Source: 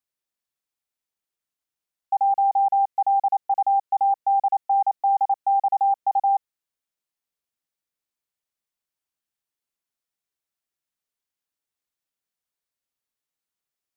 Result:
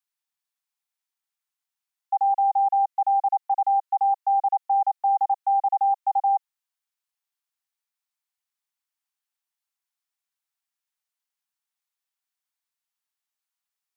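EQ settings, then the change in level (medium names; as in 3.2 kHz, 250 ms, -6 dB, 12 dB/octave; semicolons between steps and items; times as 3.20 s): steep high-pass 730 Hz 48 dB/octave; 0.0 dB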